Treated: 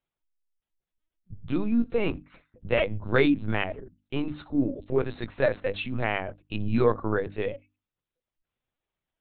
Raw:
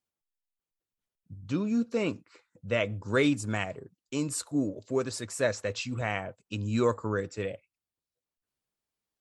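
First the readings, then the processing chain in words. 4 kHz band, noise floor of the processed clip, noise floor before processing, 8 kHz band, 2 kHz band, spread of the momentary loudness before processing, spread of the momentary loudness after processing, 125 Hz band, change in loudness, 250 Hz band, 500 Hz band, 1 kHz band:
0.0 dB, below −85 dBFS, below −85 dBFS, below −40 dB, +3.0 dB, 10 LU, 11 LU, +2.0 dB, +3.0 dB, +3.0 dB, +3.5 dB, +3.0 dB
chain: low-shelf EQ 69 Hz +9 dB
linear-prediction vocoder at 8 kHz pitch kept
mains-hum notches 50/100/150/200/250/300 Hz
level +3.5 dB

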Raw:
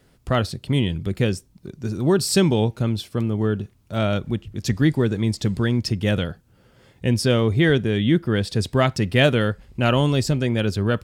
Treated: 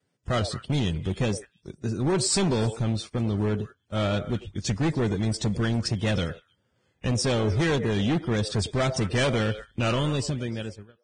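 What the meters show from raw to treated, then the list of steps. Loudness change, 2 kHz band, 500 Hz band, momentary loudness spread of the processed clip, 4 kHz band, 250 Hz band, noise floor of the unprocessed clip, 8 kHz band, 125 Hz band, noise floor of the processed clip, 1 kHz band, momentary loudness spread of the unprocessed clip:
−5.0 dB, −6.0 dB, −5.5 dB, 9 LU, −3.5 dB, −6.0 dB, −58 dBFS, 0.0 dB, −5.0 dB, −72 dBFS, −4.0 dB, 8 LU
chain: fade-out on the ending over 1.27 s
soft clipping −9.5 dBFS, distortion −20 dB
pitch vibrato 1.7 Hz 70 cents
on a send: echo through a band-pass that steps 101 ms, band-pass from 560 Hz, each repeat 1.4 octaves, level −10.5 dB
on the sum: gain into a clipping stage and back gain 18.5 dB
noise gate −35 dBFS, range −15 dB
level −2 dB
Ogg Vorbis 16 kbit/s 22,050 Hz

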